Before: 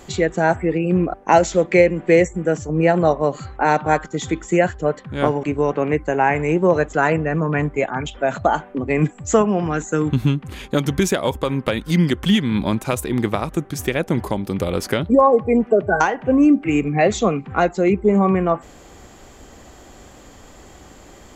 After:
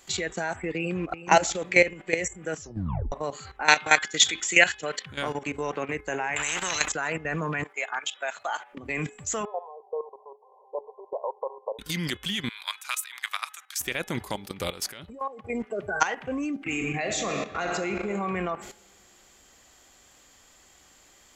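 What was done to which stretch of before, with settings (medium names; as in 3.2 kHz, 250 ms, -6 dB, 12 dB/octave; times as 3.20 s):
0.76–1.20 s: echo throw 370 ms, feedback 25%, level -5 dB
2.61 s: tape stop 0.51 s
3.68–5.06 s: frequency weighting D
6.36–6.92 s: spectrum-flattening compressor 4:1
7.64–8.73 s: high-pass 680 Hz
9.45–11.79 s: brick-wall FIR band-pass 400–1100 Hz
12.49–13.81 s: high-pass 1.1 kHz 24 dB/octave
14.70–15.50 s: compression 3:1, threshold -27 dBFS
16.53–18.00 s: reverb throw, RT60 2.4 s, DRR 5.5 dB
whole clip: tilt shelf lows -8.5 dB, about 1.1 kHz; level held to a coarse grid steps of 14 dB; de-hum 424.4 Hz, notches 9; trim -1 dB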